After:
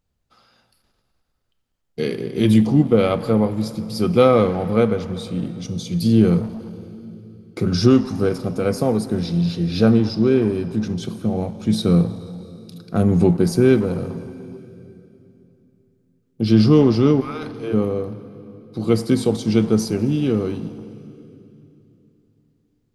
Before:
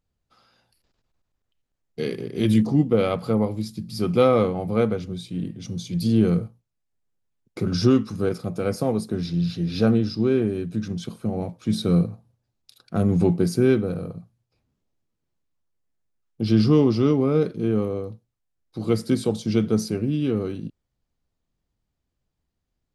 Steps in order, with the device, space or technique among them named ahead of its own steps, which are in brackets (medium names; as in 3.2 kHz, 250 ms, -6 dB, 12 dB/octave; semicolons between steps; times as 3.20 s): 17.20–17.72 s: high-pass 1.2 kHz -> 400 Hz 24 dB/octave; saturated reverb return (on a send at -10.5 dB: reverberation RT60 2.9 s, pre-delay 3 ms + saturation -21 dBFS, distortion -9 dB); on the sum: trim +4 dB